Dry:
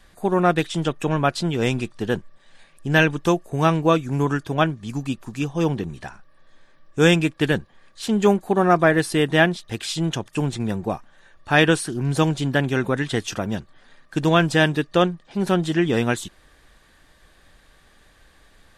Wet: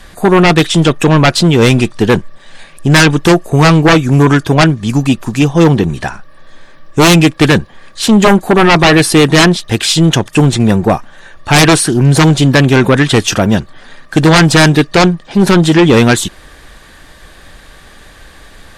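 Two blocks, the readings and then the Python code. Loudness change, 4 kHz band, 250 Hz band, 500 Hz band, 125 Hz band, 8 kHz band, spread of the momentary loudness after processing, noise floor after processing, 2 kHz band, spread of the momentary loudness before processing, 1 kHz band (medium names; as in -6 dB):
+12.5 dB, +15.0 dB, +13.0 dB, +10.5 dB, +14.0 dB, +17.5 dB, 7 LU, -38 dBFS, +11.0 dB, 12 LU, +11.0 dB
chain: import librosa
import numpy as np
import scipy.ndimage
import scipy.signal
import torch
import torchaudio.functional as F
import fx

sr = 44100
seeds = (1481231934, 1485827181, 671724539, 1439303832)

y = fx.fold_sine(x, sr, drive_db=13, ceiling_db=-2.0)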